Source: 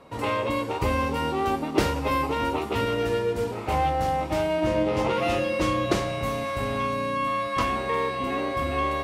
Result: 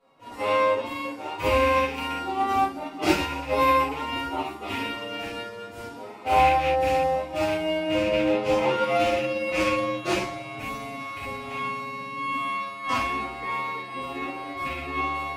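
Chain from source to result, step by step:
loose part that buzzes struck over −26 dBFS, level −15 dBFS
low-shelf EQ 130 Hz −8 dB
mains-hum notches 60/120/180/240/300/360 Hz
phase-vocoder stretch with locked phases 1.7×
convolution reverb, pre-delay 4 ms, DRR −9 dB
expander for the loud parts 1.5 to 1, over −34 dBFS
level −6 dB

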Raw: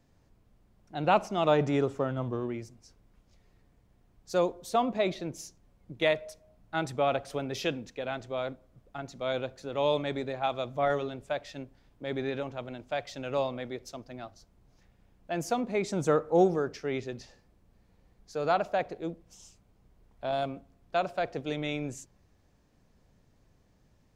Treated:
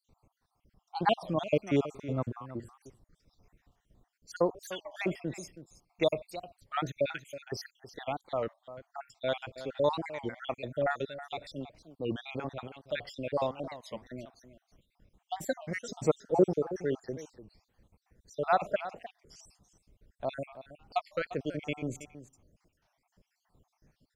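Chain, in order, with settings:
time-frequency cells dropped at random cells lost 66%
single-tap delay 322 ms −14 dB
wow of a warped record 33 1/3 rpm, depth 250 cents
level +1.5 dB

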